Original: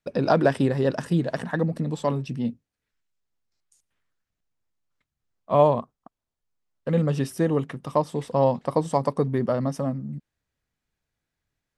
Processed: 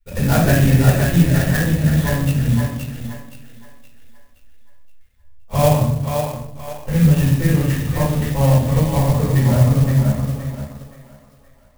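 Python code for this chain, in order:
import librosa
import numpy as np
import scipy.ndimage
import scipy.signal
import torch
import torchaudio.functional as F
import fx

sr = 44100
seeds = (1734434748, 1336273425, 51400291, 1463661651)

p1 = scipy.signal.sosfilt(scipy.signal.butter(4, 4800.0, 'lowpass', fs=sr, output='sos'), x)
p2 = fx.band_shelf(p1, sr, hz=640.0, db=-14.0, octaves=2.5)
p3 = p2 + fx.echo_thinned(p2, sr, ms=521, feedback_pct=45, hz=370.0, wet_db=-4.0, dry=0)
p4 = fx.room_shoebox(p3, sr, seeds[0], volume_m3=180.0, walls='mixed', distance_m=4.5)
p5 = np.sign(p4) * np.maximum(np.abs(p4) - 10.0 ** (-30.0 / 20.0), 0.0)
p6 = p4 + F.gain(torch.from_numpy(p5), -5.0).numpy()
p7 = fx.low_shelf_res(p6, sr, hz=110.0, db=13.5, q=3.0)
p8 = fx.clock_jitter(p7, sr, seeds[1], jitter_ms=0.055)
y = F.gain(torch.from_numpy(p8), -3.0).numpy()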